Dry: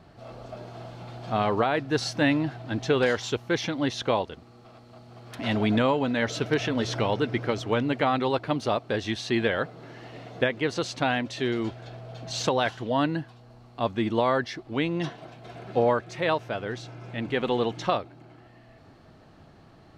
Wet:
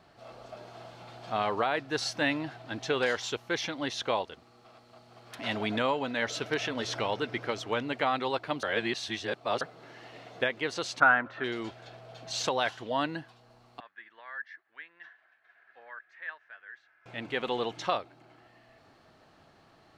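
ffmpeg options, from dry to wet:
ffmpeg -i in.wav -filter_complex "[0:a]asettb=1/sr,asplit=3[link_01][link_02][link_03];[link_01]atrim=end=11.004[link_04];[link_02]atrim=start=11:end=11.44,asetpts=PTS-STARTPTS,afade=type=in:duration=0.004:curve=qsin,afade=type=out:start_time=0.436:duration=0.004:curve=qsin,lowpass=frequency=1400:width_type=q:width=6[link_05];[link_03]atrim=start=11.436[link_06];[link_04][link_05]acrossfade=duration=0.004:curve1=hsin:curve2=qsin[link_07];[link_07][link_06]acrossfade=duration=0.004:curve1=qsin:curve2=hsin,asettb=1/sr,asplit=3[link_08][link_09][link_10];[link_08]atrim=end=13.804[link_11];[link_09]atrim=start=13.8:end=17.06,asetpts=PTS-STARTPTS,afade=type=in:duration=0.004:curve=qsin,afade=type=out:start_time=3.256:duration=0.004:curve=qsin,bandpass=frequency=1700:width_type=q:width=8.9[link_12];[link_10]atrim=start=17.056[link_13];[link_11][link_12]acrossfade=duration=0.004:curve1=hsin:curve2=qsin[link_14];[link_14][link_13]acrossfade=duration=0.004:curve1=qsin:curve2=hsin,asplit=3[link_15][link_16][link_17];[link_15]atrim=end=8.632[link_18];[link_16]atrim=start=8.628:end=9.612,asetpts=PTS-STARTPTS,areverse[link_19];[link_17]atrim=start=9.608[link_20];[link_18][link_19]acrossfade=duration=0.004:curve1=hsin:curve2=hsin[link_21];[link_21][link_20]acrossfade=duration=0.004:curve1=hsin:curve2=hsin,lowshelf=frequency=360:gain=-12,volume=-1.5dB" out.wav

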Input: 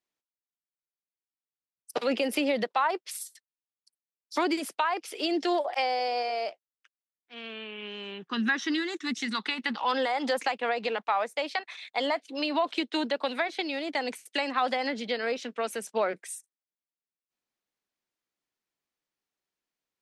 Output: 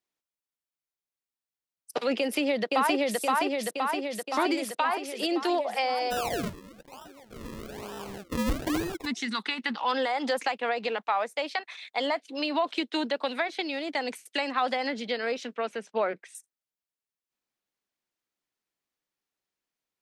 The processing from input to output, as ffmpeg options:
ffmpeg -i in.wav -filter_complex "[0:a]asplit=2[link_01][link_02];[link_02]afade=type=in:start_time=2.19:duration=0.01,afade=type=out:start_time=3.18:duration=0.01,aecho=0:1:520|1040|1560|2080|2600|3120|3640|4160|4680|5200|5720|6240:0.944061|0.660843|0.46259|0.323813|0.226669|0.158668|0.111068|0.0777475|0.0544232|0.0380963|0.0266674|0.0186672[link_03];[link_01][link_03]amix=inputs=2:normalize=0,asplit=3[link_04][link_05][link_06];[link_04]afade=type=out:start_time=6.1:duration=0.02[link_07];[link_05]acrusher=samples=40:mix=1:aa=0.000001:lfo=1:lforange=40:lforate=1.1,afade=type=in:start_time=6.1:duration=0.02,afade=type=out:start_time=9.05:duration=0.02[link_08];[link_06]afade=type=in:start_time=9.05:duration=0.02[link_09];[link_07][link_08][link_09]amix=inputs=3:normalize=0,asettb=1/sr,asplit=3[link_10][link_11][link_12];[link_10]atrim=end=15.564[link_13];[link_11]atrim=start=15.56:end=16.35,asetpts=PTS-STARTPTS,afade=type=in:duration=0.004:curve=qsin,afade=type=out:start_time=0.786:duration=0.004:curve=qsin,lowpass=3600[link_14];[link_12]atrim=start=16.346[link_15];[link_13][link_14]acrossfade=duration=0.004:curve1=hsin:curve2=qsin[link_16];[link_16][link_15]acrossfade=duration=0.004:curve1=qsin:curve2=hsin" out.wav

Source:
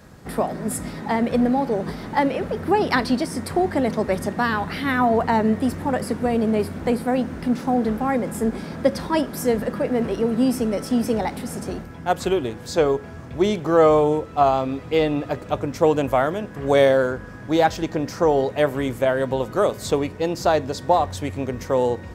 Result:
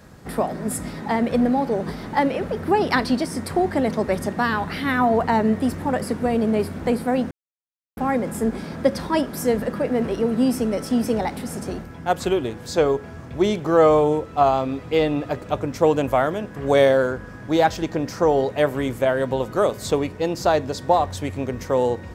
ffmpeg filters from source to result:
ffmpeg -i in.wav -filter_complex "[0:a]asplit=3[link_01][link_02][link_03];[link_01]atrim=end=7.31,asetpts=PTS-STARTPTS,afade=type=out:start_time=7.306:duration=0.004:curve=hsin[link_04];[link_02]atrim=start=7.31:end=7.97,asetpts=PTS-STARTPTS,volume=0[link_05];[link_03]atrim=start=7.97,asetpts=PTS-STARTPTS,afade=type=in:duration=0.004:curve=hsin[link_06];[link_04][link_05][link_06]concat=n=3:v=0:a=1" out.wav

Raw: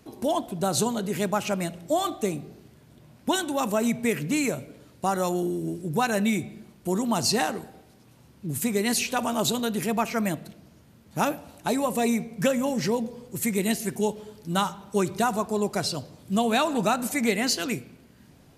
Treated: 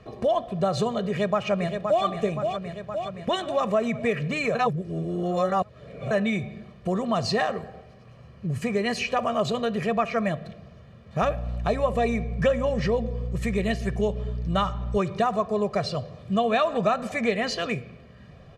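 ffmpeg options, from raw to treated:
ffmpeg -i in.wav -filter_complex "[0:a]asplit=2[link_01][link_02];[link_02]afade=type=in:start_time=1:duration=0.01,afade=type=out:start_time=2.04:duration=0.01,aecho=0:1:520|1040|1560|2080|2600|3120|3640|4160:0.398107|0.238864|0.143319|0.0859911|0.0515947|0.0309568|0.0185741|0.0111445[link_03];[link_01][link_03]amix=inputs=2:normalize=0,asettb=1/sr,asplit=3[link_04][link_05][link_06];[link_04]atrim=end=7.534[link_07];[link_05]atrim=start=7.53:end=9.86,asetpts=PTS-STARTPTS,afade=type=in:duration=0.004:curve=qsin,afade=type=out:start_time=2.326:duration=0.004:curve=qsin,bandreject=frequency=3600:width=12[link_08];[link_06]atrim=start=9.856[link_09];[link_07][link_08]acrossfade=duration=0.004:curve1=hsin:curve2=qsin[link_10];[link_10][link_09]acrossfade=duration=0.004:curve1=qsin:curve2=hsin,asettb=1/sr,asplit=3[link_11][link_12][link_13];[link_11]atrim=end=11.224[link_14];[link_12]atrim=start=11.22:end=14.98,asetpts=PTS-STARTPTS,afade=type=in:duration=0.004:curve=qsin,afade=type=out:start_time=3.756:duration=0.004:curve=qsin,aeval=exprs='val(0)+0.0178*(sin(2*PI*60*n/s)+sin(2*PI*2*60*n/s)/2+sin(2*PI*3*60*n/s)/3+sin(2*PI*4*60*n/s)/4+sin(2*PI*5*60*n/s)/5)':channel_layout=same[link_15];[link_13]atrim=start=14.976[link_16];[link_14][link_15]acrossfade=duration=0.004:curve1=hsin:curve2=qsin[link_17];[link_17][link_16]acrossfade=duration=0.004:curve1=qsin:curve2=hsin,asplit=3[link_18][link_19][link_20];[link_18]atrim=end=4.552[link_21];[link_19]atrim=start=4.548:end=6.112,asetpts=PTS-STARTPTS,areverse[link_22];[link_20]atrim=start=6.108[link_23];[link_21][link_22]acrossfade=duration=0.004:curve1=hsin:curve2=hsin[link_24];[link_24][link_23]acrossfade=duration=0.004:curve1=hsin:curve2=hsin,lowpass=2900,aecho=1:1:1.7:0.76,acompressor=threshold=-34dB:ratio=1.5,volume=5dB" out.wav

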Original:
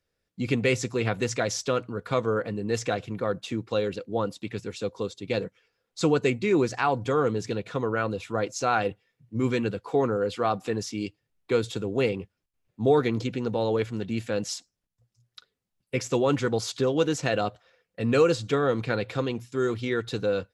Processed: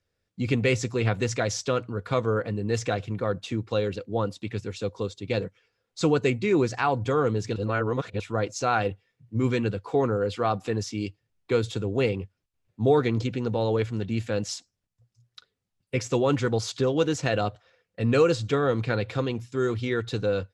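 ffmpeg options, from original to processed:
ffmpeg -i in.wav -filter_complex "[0:a]asplit=3[link_01][link_02][link_03];[link_01]atrim=end=7.562[link_04];[link_02]atrim=start=7.558:end=8.202,asetpts=PTS-STARTPTS,areverse[link_05];[link_03]atrim=start=8.198[link_06];[link_04][link_05]acrossfade=duration=0.004:curve1=hsin:curve2=hsin[link_07];[link_07][link_06]acrossfade=duration=0.004:curve1=hsin:curve2=hsin,lowpass=9400,equalizer=frequency=96:width_type=o:width=0.63:gain=7.5" out.wav

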